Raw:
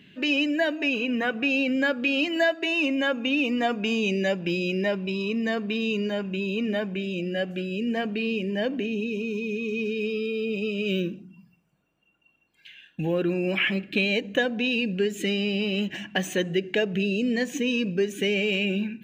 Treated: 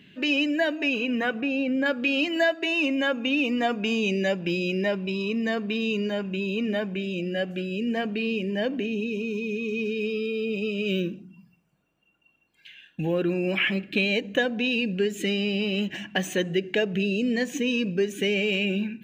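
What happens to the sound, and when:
0:01.41–0:01.86: high-shelf EQ 2,200 Hz −11.5 dB

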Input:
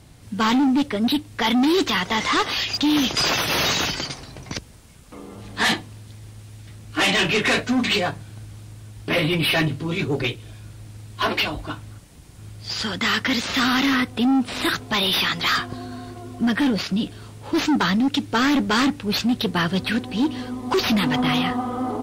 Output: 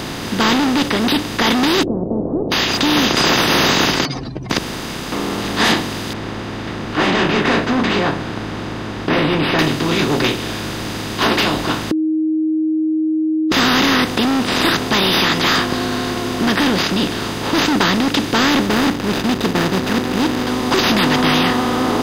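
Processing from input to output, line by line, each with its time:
0:01.83–0:02.52: Butterworth low-pass 610 Hz 72 dB per octave
0:04.05–0:04.50: expanding power law on the bin magnitudes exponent 3.5
0:06.13–0:09.59: low-pass filter 1,500 Hz
0:11.91–0:13.52: beep over 314 Hz −15 dBFS
0:18.66–0:20.47: running median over 41 samples
whole clip: compressor on every frequency bin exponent 0.4; level −1 dB

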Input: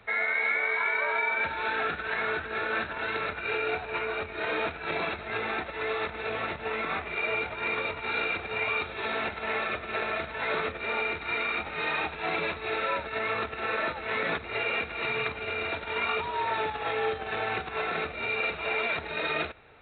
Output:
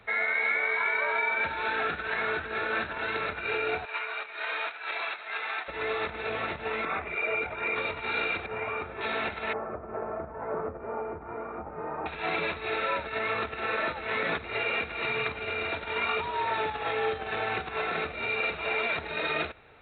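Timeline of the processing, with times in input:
0:03.85–0:05.68: high-pass filter 900 Hz
0:06.85–0:07.76: spectral envelope exaggerated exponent 1.5
0:08.46–0:09.01: low-pass filter 1,600 Hz
0:09.53–0:12.06: low-pass filter 1,100 Hz 24 dB per octave

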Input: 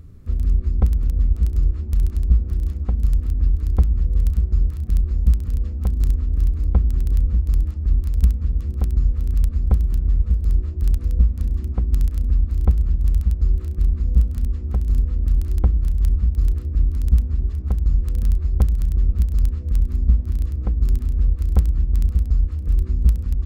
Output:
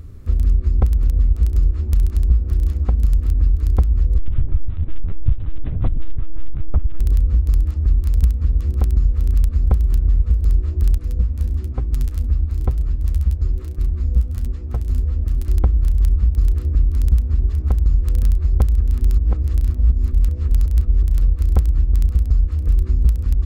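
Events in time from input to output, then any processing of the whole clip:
0:04.18–0:07.00: linear-prediction vocoder at 8 kHz pitch kept
0:10.98–0:15.48: flanger 1.1 Hz, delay 5.8 ms, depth 8.7 ms, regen +34%
0:18.78–0:21.22: reverse
whole clip: parametric band 180 Hz −6.5 dB 0.83 octaves; downward compressor 2.5 to 1, threshold −19 dBFS; level +6.5 dB

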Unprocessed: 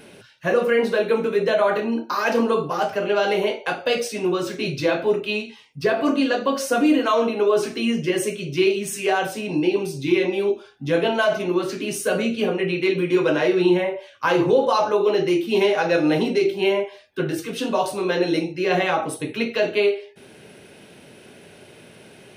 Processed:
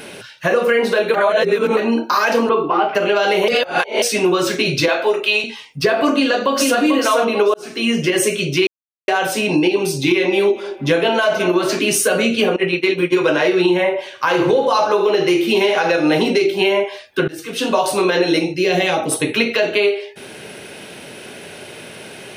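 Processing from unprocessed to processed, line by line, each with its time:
0:01.14–0:01.77: reverse
0:02.49–0:02.95: loudspeaker in its box 240–2,900 Hz, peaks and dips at 340 Hz +9 dB, 550 Hz −9 dB, 1,700 Hz −8 dB
0:03.48–0:04.02: reverse
0:04.88–0:05.44: high-pass filter 460 Hz
0:06.15–0:06.80: delay throw 440 ms, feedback 15%, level −3 dB
0:07.54–0:08.10: fade in
0:08.67–0:09.08: silence
0:09.82–0:11.79: feedback echo with a band-pass in the loop 211 ms, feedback 58%, band-pass 820 Hz, level −14.5 dB
0:12.56–0:13.24: downward expander −19 dBFS
0:13.91–0:15.97: repeating echo 73 ms, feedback 47%, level −13 dB
0:17.28–0:17.93: fade in, from −22 dB
0:18.54–0:19.12: parametric band 1,200 Hz −14 dB 1.6 octaves
whole clip: low-shelf EQ 410 Hz −7.5 dB; downward compressor, threshold −25 dBFS; boost into a limiter +18 dB; level −4.5 dB

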